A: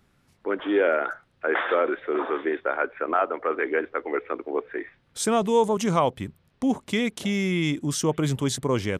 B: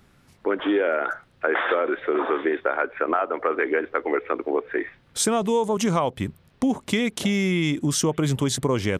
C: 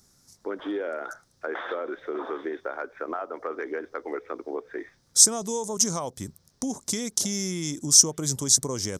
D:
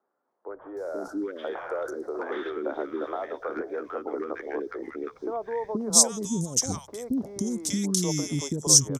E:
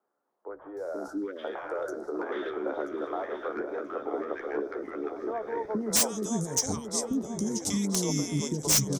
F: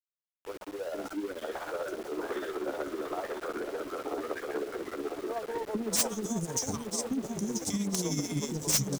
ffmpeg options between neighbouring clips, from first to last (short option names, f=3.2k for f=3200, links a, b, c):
-af "acompressor=threshold=-26dB:ratio=5,volume=7dB"
-af "highshelf=f=4k:t=q:w=3:g=13.5,volume=-8.5dB"
-filter_complex "[0:a]acrossover=split=400|1300[a][b][c];[a]adelay=480[d];[c]adelay=770[e];[d][b][e]amix=inputs=3:normalize=0,acrossover=split=1000[f][g];[f]dynaudnorm=f=120:g=17:m=6dB[h];[h][g]amix=inputs=2:normalize=0,volume=-1.5dB"
-filter_complex "[0:a]asplit=2[a][b];[b]adelay=982,lowpass=f=4k:p=1,volume=-7dB,asplit=2[c][d];[d]adelay=982,lowpass=f=4k:p=1,volume=0.51,asplit=2[e][f];[f]adelay=982,lowpass=f=4k:p=1,volume=0.51,asplit=2[g][h];[h]adelay=982,lowpass=f=4k:p=1,volume=0.51,asplit=2[i][j];[j]adelay=982,lowpass=f=4k:p=1,volume=0.51,asplit=2[k][l];[l]adelay=982,lowpass=f=4k:p=1,volume=0.51[m];[a][c][e][g][i][k][m]amix=inputs=7:normalize=0,acrossover=split=110[n][o];[o]aeval=exprs='0.188*(abs(mod(val(0)/0.188+3,4)-2)-1)':c=same[p];[n][p]amix=inputs=2:normalize=0,asplit=2[q][r];[r]adelay=14,volume=-11.5dB[s];[q][s]amix=inputs=2:normalize=0,volume=-2dB"
-af "aeval=exprs='val(0)+0.5*0.0211*sgn(val(0))':c=same,tremolo=f=16:d=0.51,aeval=exprs='val(0)*gte(abs(val(0)),0.0119)':c=same,volume=-2.5dB"